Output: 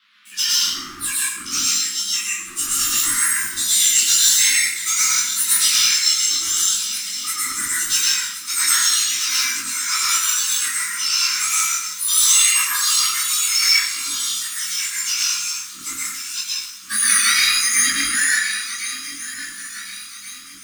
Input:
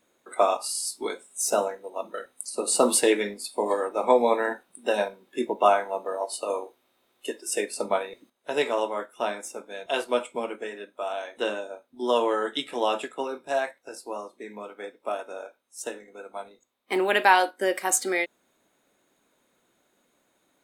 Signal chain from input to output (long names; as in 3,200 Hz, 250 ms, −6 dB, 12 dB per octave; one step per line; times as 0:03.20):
frequency axis turned over on the octave scale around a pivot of 1,900 Hz
downward compressor 3 to 1, threshold −28 dBFS, peak gain reduction 13.5 dB
feedback echo with a long and a short gap by turns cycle 1,428 ms, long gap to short 3 to 1, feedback 48%, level −14 dB
leveller curve on the samples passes 3
high-shelf EQ 2,400 Hz +10.5 dB
noise in a band 900–4,000 Hz −52 dBFS
elliptic band-stop filter 250–1,200 Hz, stop band 50 dB
dense smooth reverb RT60 0.87 s, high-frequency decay 0.7×, pre-delay 95 ms, DRR −5 dB
dynamic equaliser 1,900 Hz, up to +5 dB, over −31 dBFS, Q 2.2
micro pitch shift up and down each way 25 cents
level −2.5 dB